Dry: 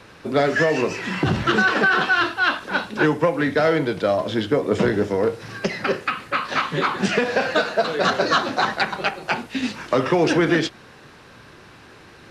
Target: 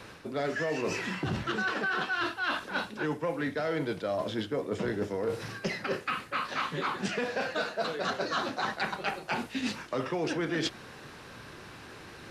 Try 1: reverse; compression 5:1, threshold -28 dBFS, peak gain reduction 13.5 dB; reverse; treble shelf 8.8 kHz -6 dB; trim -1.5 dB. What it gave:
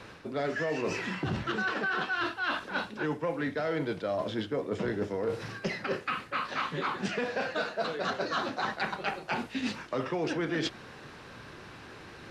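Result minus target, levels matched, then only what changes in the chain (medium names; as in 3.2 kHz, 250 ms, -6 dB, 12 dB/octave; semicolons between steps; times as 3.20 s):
8 kHz band -3.5 dB
change: treble shelf 8.8 kHz +5.5 dB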